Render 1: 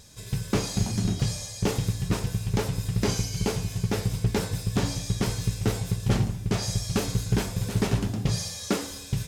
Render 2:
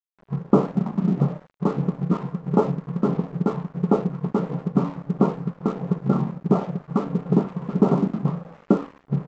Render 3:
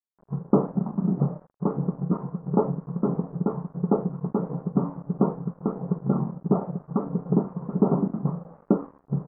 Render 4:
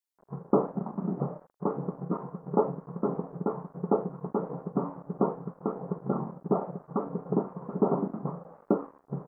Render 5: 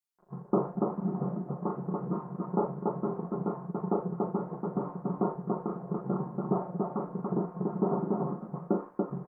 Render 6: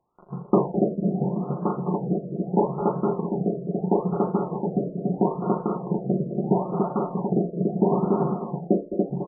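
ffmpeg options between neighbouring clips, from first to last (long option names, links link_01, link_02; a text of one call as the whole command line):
ffmpeg -i in.wav -af "afftfilt=real='re*between(b*sr/4096,130,1400)':imag='im*between(b*sr/4096,130,1400)':win_size=4096:overlap=0.75,aphaser=in_gain=1:out_gain=1:delay=1:decay=0.43:speed=1.5:type=sinusoidal,aresample=16000,aeval=exprs='sgn(val(0))*max(abs(val(0))-0.00562,0)':channel_layout=same,aresample=44100,volume=6dB" out.wav
ffmpeg -i in.wav -af "lowpass=frequency=1200:width=0.5412,lowpass=frequency=1200:width=1.3066,volume=-3dB" out.wav
ffmpeg -i in.wav -af "bass=frequency=250:gain=-11,treble=frequency=4000:gain=5" out.wav
ffmpeg -i in.wav -af "bandreject=frequency=530:width=13,aecho=1:1:5.6:0.46,aecho=1:1:37.9|285.7:0.562|0.794,volume=-4.5dB" out.wav
ffmpeg -i in.wav -filter_complex "[0:a]asplit=2[link_01][link_02];[link_02]adelay=210,highpass=300,lowpass=3400,asoftclip=type=hard:threshold=-23dB,volume=-7dB[link_03];[link_01][link_03]amix=inputs=2:normalize=0,acompressor=mode=upward:threshold=-51dB:ratio=2.5,afftfilt=real='re*lt(b*sr/1024,680*pow(1600/680,0.5+0.5*sin(2*PI*0.76*pts/sr)))':imag='im*lt(b*sr/1024,680*pow(1600/680,0.5+0.5*sin(2*PI*0.76*pts/sr)))':win_size=1024:overlap=0.75,volume=7.5dB" out.wav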